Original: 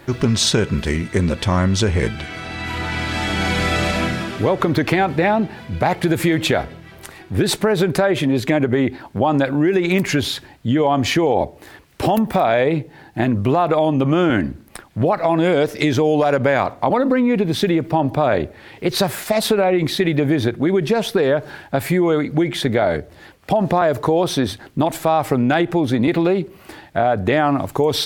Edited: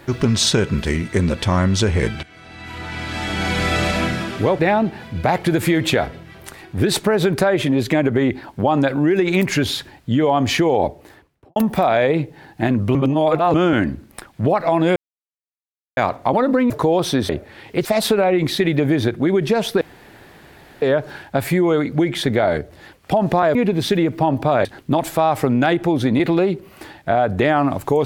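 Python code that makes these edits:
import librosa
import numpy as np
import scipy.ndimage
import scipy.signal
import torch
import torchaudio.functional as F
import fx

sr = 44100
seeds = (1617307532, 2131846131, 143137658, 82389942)

y = fx.studio_fade_out(x, sr, start_s=11.42, length_s=0.71)
y = fx.edit(y, sr, fx.fade_in_from(start_s=2.23, length_s=1.53, floor_db=-16.5),
    fx.cut(start_s=4.59, length_s=0.57),
    fx.reverse_span(start_s=13.52, length_s=0.59),
    fx.silence(start_s=15.53, length_s=1.01),
    fx.swap(start_s=17.27, length_s=1.1, other_s=23.94, other_length_s=0.59),
    fx.cut(start_s=18.93, length_s=0.32),
    fx.insert_room_tone(at_s=21.21, length_s=1.01), tone=tone)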